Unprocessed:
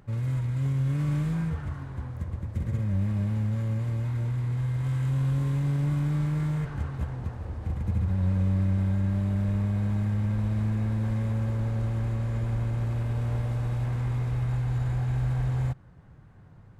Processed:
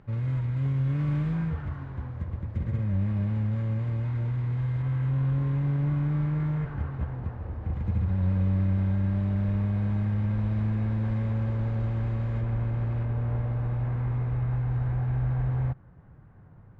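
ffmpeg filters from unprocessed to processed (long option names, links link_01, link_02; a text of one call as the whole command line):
ffmpeg -i in.wav -af "asetnsamples=nb_out_samples=441:pad=0,asendcmd='4.82 lowpass f 2300;7.73 lowpass f 3400;12.41 lowpass f 2500;13.05 lowpass f 1900',lowpass=3200" out.wav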